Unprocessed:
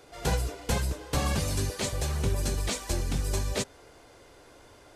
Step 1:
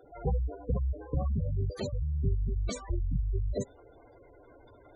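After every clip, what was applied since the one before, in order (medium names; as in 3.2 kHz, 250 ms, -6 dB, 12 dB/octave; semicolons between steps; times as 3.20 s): spectral gate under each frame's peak -10 dB strong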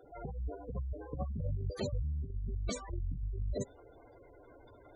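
compressor with a negative ratio -31 dBFS, ratio -0.5; trim -4 dB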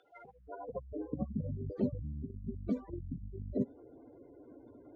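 median filter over 5 samples; band-pass sweep 3 kHz -> 250 Hz, 0.20–1.07 s; trim +11 dB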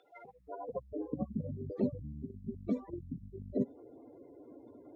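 comb of notches 1.5 kHz; trim +2 dB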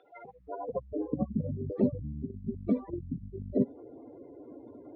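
distance through air 300 m; trim +6 dB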